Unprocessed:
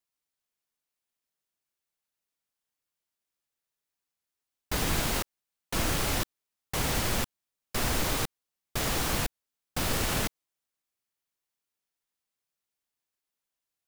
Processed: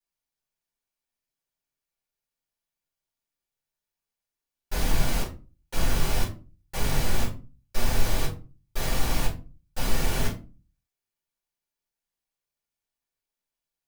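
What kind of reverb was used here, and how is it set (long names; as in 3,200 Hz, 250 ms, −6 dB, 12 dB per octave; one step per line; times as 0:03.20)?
rectangular room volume 140 cubic metres, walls furnished, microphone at 4.5 metres
level −10.5 dB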